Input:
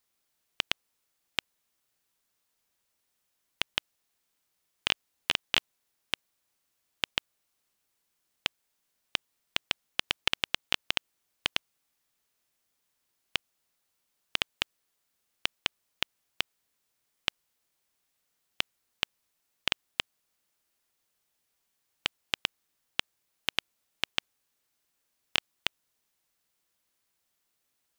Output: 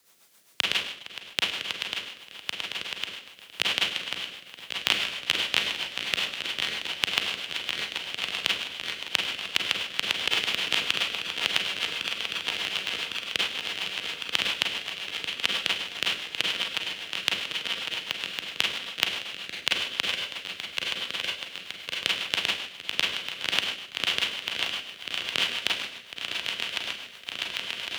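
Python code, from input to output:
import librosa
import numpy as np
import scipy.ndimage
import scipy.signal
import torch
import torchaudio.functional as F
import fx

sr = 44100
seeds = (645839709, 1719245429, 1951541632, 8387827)

p1 = fx.reverse_delay_fb(x, sr, ms=553, feedback_pct=85, wet_db=-11)
p2 = fx.rider(p1, sr, range_db=5, speed_s=0.5)
p3 = p1 + (p2 * librosa.db_to_amplitude(0.0))
p4 = fx.low_shelf(p3, sr, hz=210.0, db=-5.5)
p5 = p4 + fx.echo_feedback(p4, sr, ms=462, feedback_pct=41, wet_db=-19.0, dry=0)
p6 = fx.rev_schroeder(p5, sr, rt60_s=0.66, comb_ms=33, drr_db=-1.5)
p7 = fx.rotary(p6, sr, hz=7.5)
p8 = scipy.signal.sosfilt(scipy.signal.butter(2, 78.0, 'highpass', fs=sr, output='sos'), p7)
y = fx.band_squash(p8, sr, depth_pct=40)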